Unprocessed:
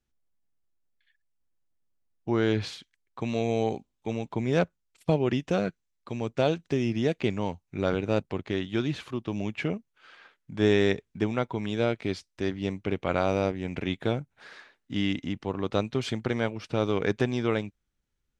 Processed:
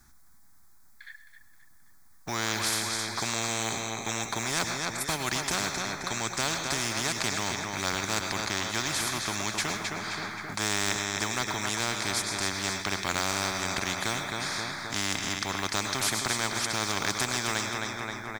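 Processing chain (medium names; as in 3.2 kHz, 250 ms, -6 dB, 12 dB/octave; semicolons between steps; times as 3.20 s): bass shelf 430 Hz -8 dB; static phaser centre 1.2 kHz, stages 4; feedback delay 264 ms, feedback 43%, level -11 dB; short-mantissa float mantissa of 6-bit; on a send at -15 dB: tilt EQ +1.5 dB/octave + reverberation, pre-delay 97 ms; on the sum: spectrum-flattening compressor 4:1; trim +7.5 dB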